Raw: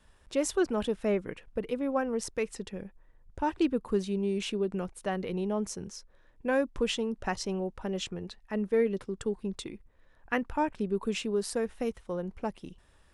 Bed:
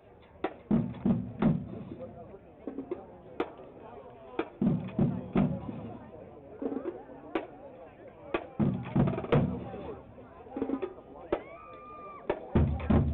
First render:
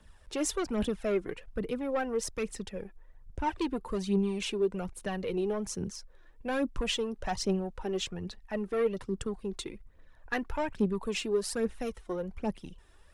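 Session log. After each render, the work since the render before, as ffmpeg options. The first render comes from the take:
ffmpeg -i in.wav -filter_complex "[0:a]acrossover=split=160|2900[link_01][link_02][link_03];[link_02]asoftclip=type=tanh:threshold=-25dB[link_04];[link_01][link_04][link_03]amix=inputs=3:normalize=0,aphaser=in_gain=1:out_gain=1:delay=3:decay=0.52:speed=1.2:type=triangular" out.wav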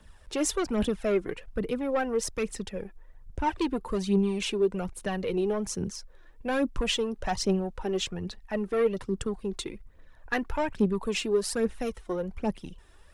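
ffmpeg -i in.wav -af "volume=3.5dB" out.wav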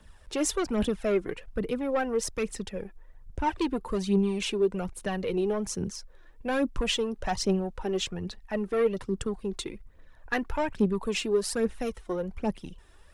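ffmpeg -i in.wav -af anull out.wav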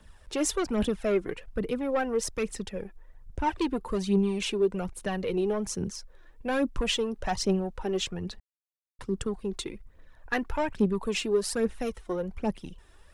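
ffmpeg -i in.wav -filter_complex "[0:a]asplit=3[link_01][link_02][link_03];[link_01]atrim=end=8.4,asetpts=PTS-STARTPTS,afade=type=out:start_time=8.396:duration=0.004:curve=hsin[link_04];[link_02]atrim=start=8.4:end=8.99,asetpts=PTS-STARTPTS,volume=0[link_05];[link_03]atrim=start=8.99,asetpts=PTS-STARTPTS,afade=type=in:duration=0.004:curve=hsin[link_06];[link_04][link_05][link_06]concat=n=3:v=0:a=1" out.wav

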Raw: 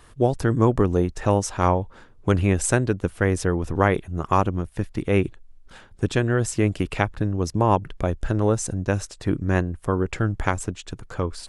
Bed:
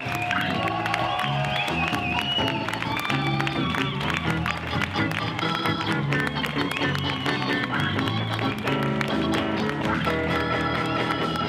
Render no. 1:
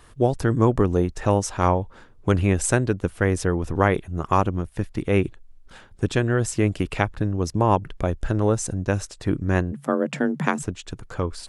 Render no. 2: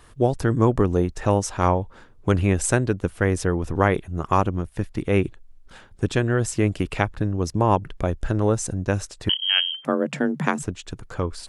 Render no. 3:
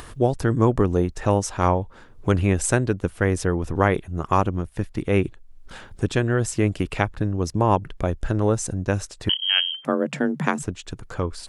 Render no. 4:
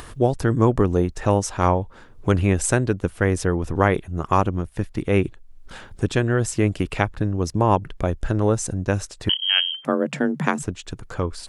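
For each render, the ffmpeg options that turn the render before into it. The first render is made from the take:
ffmpeg -i in.wav -filter_complex "[0:a]asplit=3[link_01][link_02][link_03];[link_01]afade=type=out:start_time=9.71:duration=0.02[link_04];[link_02]afreqshift=130,afade=type=in:start_time=9.71:duration=0.02,afade=type=out:start_time=10.61:duration=0.02[link_05];[link_03]afade=type=in:start_time=10.61:duration=0.02[link_06];[link_04][link_05][link_06]amix=inputs=3:normalize=0" out.wav
ffmpeg -i in.wav -filter_complex "[0:a]asettb=1/sr,asplit=3[link_01][link_02][link_03];[link_01]atrim=end=9.294[link_04];[link_02]atrim=start=9.29:end=9.85,asetpts=PTS-STARTPTS,afade=type=in:duration=0.004:curve=qsin,afade=type=out:start_time=0.556:duration=0.004:curve=qsin,lowpass=frequency=2800:width_type=q:width=0.5098,lowpass=frequency=2800:width_type=q:width=0.6013,lowpass=frequency=2800:width_type=q:width=0.9,lowpass=frequency=2800:width_type=q:width=2.563,afreqshift=-3300[link_05];[link_03]atrim=start=9.846[link_06];[link_04][link_05]acrossfade=duration=0.004:curve1=hsin:curve2=qsin[link_07];[link_07][link_06]acrossfade=duration=0.004:curve1=qsin:curve2=hsin" out.wav
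ffmpeg -i in.wav -af "acompressor=mode=upward:threshold=-31dB:ratio=2.5" out.wav
ffmpeg -i in.wav -af "volume=1dB,alimiter=limit=-3dB:level=0:latency=1" out.wav

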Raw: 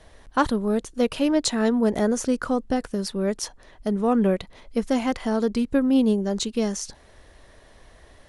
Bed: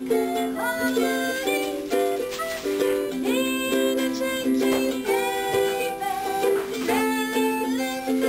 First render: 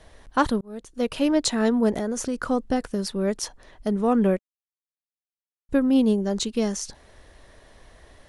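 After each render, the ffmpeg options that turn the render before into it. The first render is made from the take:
ffmpeg -i in.wav -filter_complex "[0:a]asettb=1/sr,asplit=3[link_01][link_02][link_03];[link_01]atrim=end=1.914[link_04];[link_02]atrim=start=1.91:end=2.41,asetpts=PTS-STARTPTS,afade=type=in:duration=0.004:curve=qsin,afade=type=out:start_time=0.496:duration=0.004:curve=qsin,acompressor=threshold=-23dB:ratio=4:attack=3.2:release=140:knee=1:detection=peak[link_05];[link_03]atrim=start=2.406[link_06];[link_04][link_05]acrossfade=duration=0.004:curve1=hsin:curve2=qsin[link_07];[link_07][link_06]acrossfade=duration=0.004:curve1=qsin:curve2=hsin,asplit=4[link_08][link_09][link_10][link_11];[link_08]atrim=end=0.61,asetpts=PTS-STARTPTS,afade=type=out:start_time=0.606:duration=0.004:curve=hsin[link_12];[link_09]atrim=start=0.61:end=4.39,asetpts=PTS-STARTPTS,afade=type=in:duration=0.62,afade=type=out:start_time=3.776:duration=0.004:curve=hsin[link_13];[link_10]atrim=start=4.39:end=5.69,asetpts=PTS-STARTPTS,volume=0[link_14];[link_11]atrim=start=5.69,asetpts=PTS-STARTPTS,afade=type=in:duration=0.004:curve=hsin[link_15];[link_12][link_13][link_14][link_15]concat=n=4:v=0:a=1" out.wav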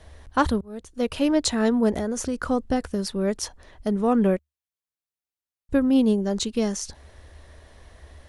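ffmpeg -i in.wav -af "equalizer=frequency=74:width_type=o:width=0.4:gain=14.5" out.wav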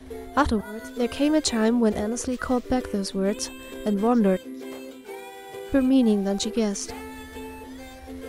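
ffmpeg -i in.wav -i bed.wav -filter_complex "[1:a]volume=-15.5dB[link_01];[0:a][link_01]amix=inputs=2:normalize=0" out.wav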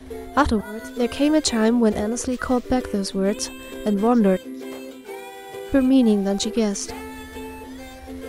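ffmpeg -i in.wav -af "volume=3dB" out.wav

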